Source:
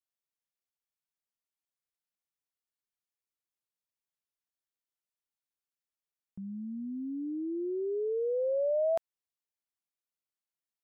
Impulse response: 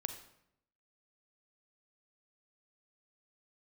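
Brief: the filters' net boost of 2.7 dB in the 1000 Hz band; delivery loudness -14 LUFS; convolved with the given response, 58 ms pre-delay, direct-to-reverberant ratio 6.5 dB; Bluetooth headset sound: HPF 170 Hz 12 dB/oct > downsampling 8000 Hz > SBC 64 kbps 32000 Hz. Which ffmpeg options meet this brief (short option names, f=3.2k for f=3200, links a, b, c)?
-filter_complex "[0:a]equalizer=f=1k:t=o:g=6,asplit=2[a][b];[1:a]atrim=start_sample=2205,adelay=58[c];[b][c]afir=irnorm=-1:irlink=0,volume=-6dB[d];[a][d]amix=inputs=2:normalize=0,highpass=170,aresample=8000,aresample=44100,volume=16.5dB" -ar 32000 -c:a sbc -b:a 64k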